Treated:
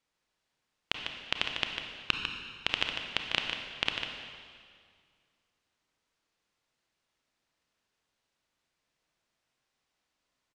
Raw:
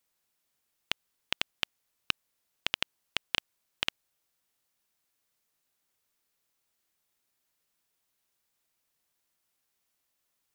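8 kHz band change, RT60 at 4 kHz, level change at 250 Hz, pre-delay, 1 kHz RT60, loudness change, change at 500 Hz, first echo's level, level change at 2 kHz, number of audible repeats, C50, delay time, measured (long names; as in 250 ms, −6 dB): −4.0 dB, 1.9 s, +4.5 dB, 28 ms, 2.0 s, +1.5 dB, +4.0 dB, −7.0 dB, +3.0 dB, 1, 2.5 dB, 149 ms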